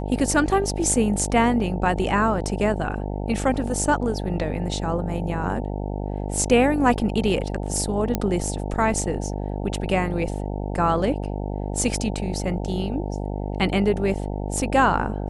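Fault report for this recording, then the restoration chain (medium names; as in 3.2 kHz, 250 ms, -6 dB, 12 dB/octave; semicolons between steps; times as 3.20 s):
buzz 50 Hz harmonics 18 -28 dBFS
8.15 s: pop -8 dBFS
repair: de-click; de-hum 50 Hz, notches 18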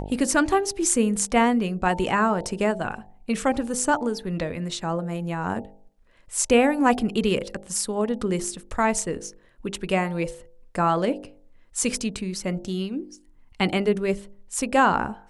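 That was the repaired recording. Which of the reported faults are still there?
nothing left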